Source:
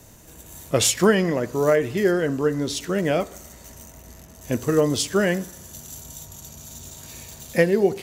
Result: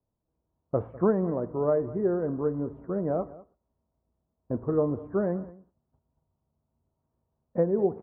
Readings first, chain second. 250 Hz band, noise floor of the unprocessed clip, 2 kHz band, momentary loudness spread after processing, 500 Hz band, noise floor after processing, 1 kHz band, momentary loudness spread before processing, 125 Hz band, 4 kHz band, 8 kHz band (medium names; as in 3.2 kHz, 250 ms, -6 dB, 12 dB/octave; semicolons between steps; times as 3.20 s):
-6.0 dB, -47 dBFS, -22.5 dB, 9 LU, -6.0 dB, -82 dBFS, -7.5 dB, 20 LU, -6.0 dB, under -40 dB, under -40 dB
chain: gate -34 dBFS, range -27 dB; steep low-pass 1.2 kHz 36 dB/octave; on a send: delay 200 ms -19 dB; on the sum: trim -6 dB